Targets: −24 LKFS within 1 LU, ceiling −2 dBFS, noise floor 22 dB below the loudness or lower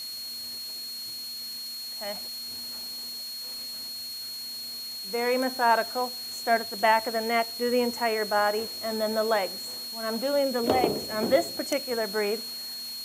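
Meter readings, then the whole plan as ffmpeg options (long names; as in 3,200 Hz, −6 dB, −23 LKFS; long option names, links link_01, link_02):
interfering tone 4,300 Hz; level of the tone −35 dBFS; background noise floor −37 dBFS; target noise floor −50 dBFS; integrated loudness −28.0 LKFS; sample peak −9.0 dBFS; target loudness −24.0 LKFS
→ -af "bandreject=frequency=4300:width=30"
-af "afftdn=noise_reduction=13:noise_floor=-37"
-af "volume=4dB"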